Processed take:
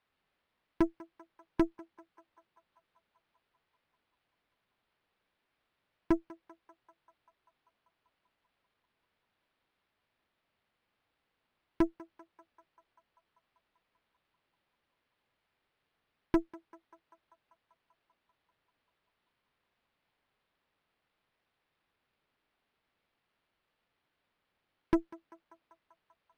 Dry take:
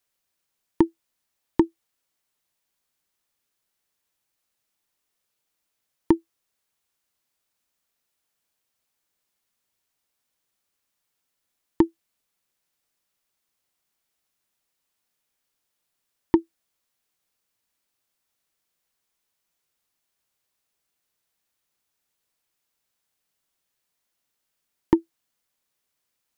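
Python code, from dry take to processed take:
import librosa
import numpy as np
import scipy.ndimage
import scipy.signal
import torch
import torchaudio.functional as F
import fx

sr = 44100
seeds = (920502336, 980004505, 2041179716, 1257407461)

y = fx.tube_stage(x, sr, drive_db=23.0, bias=0.65)
y = fx.echo_banded(y, sr, ms=195, feedback_pct=77, hz=1000.0, wet_db=-17.0)
y = np.interp(np.arange(len(y)), np.arange(len(y))[::6], y[::6])
y = y * librosa.db_to_amplitude(2.0)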